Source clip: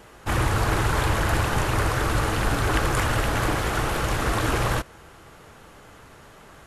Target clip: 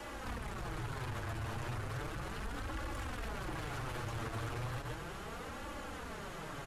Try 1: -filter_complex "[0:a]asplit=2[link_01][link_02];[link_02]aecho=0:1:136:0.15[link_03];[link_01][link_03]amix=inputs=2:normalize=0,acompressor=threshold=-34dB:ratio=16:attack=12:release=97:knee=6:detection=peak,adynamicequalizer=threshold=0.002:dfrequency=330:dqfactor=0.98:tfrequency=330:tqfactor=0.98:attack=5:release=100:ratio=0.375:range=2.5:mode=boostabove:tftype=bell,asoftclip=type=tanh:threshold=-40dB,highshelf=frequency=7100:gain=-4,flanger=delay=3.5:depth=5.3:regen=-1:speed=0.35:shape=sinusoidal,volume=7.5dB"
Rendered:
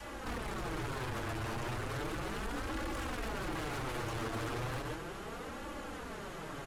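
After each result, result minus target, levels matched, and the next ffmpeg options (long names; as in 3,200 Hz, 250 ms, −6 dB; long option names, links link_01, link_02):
downward compressor: peak gain reduction −6 dB; 125 Hz band −3.0 dB
-filter_complex "[0:a]asplit=2[link_01][link_02];[link_02]aecho=0:1:136:0.15[link_03];[link_01][link_03]amix=inputs=2:normalize=0,acompressor=threshold=-40.5dB:ratio=16:attack=12:release=97:knee=6:detection=peak,adynamicequalizer=threshold=0.002:dfrequency=330:dqfactor=0.98:tfrequency=330:tqfactor=0.98:attack=5:release=100:ratio=0.375:range=2.5:mode=boostabove:tftype=bell,asoftclip=type=tanh:threshold=-40dB,highshelf=frequency=7100:gain=-4,flanger=delay=3.5:depth=5.3:regen=-1:speed=0.35:shape=sinusoidal,volume=7.5dB"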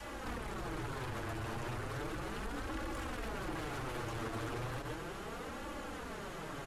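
125 Hz band −3.0 dB
-filter_complex "[0:a]asplit=2[link_01][link_02];[link_02]aecho=0:1:136:0.15[link_03];[link_01][link_03]amix=inputs=2:normalize=0,acompressor=threshold=-40.5dB:ratio=16:attack=12:release=97:knee=6:detection=peak,adynamicequalizer=threshold=0.002:dfrequency=85:dqfactor=0.98:tfrequency=85:tqfactor=0.98:attack=5:release=100:ratio=0.375:range=2.5:mode=boostabove:tftype=bell,asoftclip=type=tanh:threshold=-40dB,highshelf=frequency=7100:gain=-4,flanger=delay=3.5:depth=5.3:regen=-1:speed=0.35:shape=sinusoidal,volume=7.5dB"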